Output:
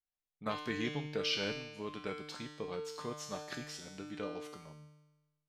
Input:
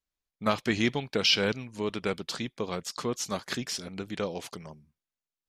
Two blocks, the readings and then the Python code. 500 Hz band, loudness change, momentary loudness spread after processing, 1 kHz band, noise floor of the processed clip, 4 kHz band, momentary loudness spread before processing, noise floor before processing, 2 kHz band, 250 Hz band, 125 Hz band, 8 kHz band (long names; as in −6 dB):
−8.5 dB, −9.5 dB, 12 LU, −8.5 dB, below −85 dBFS, −10.5 dB, 12 LU, below −85 dBFS, −9.0 dB, −9.5 dB, −8.5 dB, −11.5 dB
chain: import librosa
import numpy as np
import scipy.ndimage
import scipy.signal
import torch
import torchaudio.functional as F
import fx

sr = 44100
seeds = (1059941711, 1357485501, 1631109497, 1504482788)

y = fx.high_shelf(x, sr, hz=4300.0, db=-6.0)
y = fx.comb_fb(y, sr, f0_hz=150.0, decay_s=1.1, harmonics='all', damping=0.0, mix_pct=90)
y = F.gain(torch.from_numpy(y), 7.0).numpy()